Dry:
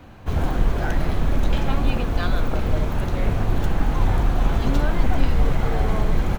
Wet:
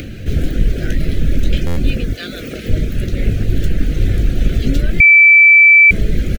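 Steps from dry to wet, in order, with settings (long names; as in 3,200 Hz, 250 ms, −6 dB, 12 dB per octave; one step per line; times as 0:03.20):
0:02.13–0:02.69: high-pass filter 430 Hz 6 dB per octave
reverb reduction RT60 0.54 s
upward compression, threshold −24 dBFS
Butterworth band-reject 940 Hz, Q 0.7
double-tracking delay 19 ms −11 dB
0:05.00–0:05.91: beep over 2,320 Hz −9.5 dBFS
buffer that repeats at 0:01.66, samples 512, times 8
level +6.5 dB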